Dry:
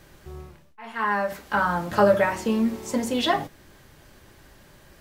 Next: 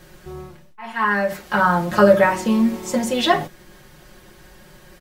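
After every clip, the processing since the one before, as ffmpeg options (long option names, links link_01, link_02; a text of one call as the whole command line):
ffmpeg -i in.wav -af "aecho=1:1:5.5:0.71,volume=3.5dB" out.wav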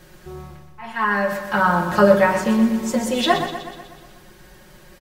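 ffmpeg -i in.wav -af "aecho=1:1:123|246|369|492|615|738|861:0.355|0.202|0.115|0.0657|0.0375|0.0213|0.0122,volume=-1dB" out.wav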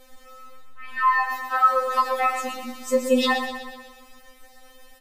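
ffmpeg -i in.wav -af "afftfilt=real='re*3.46*eq(mod(b,12),0)':imag='im*3.46*eq(mod(b,12),0)':win_size=2048:overlap=0.75" out.wav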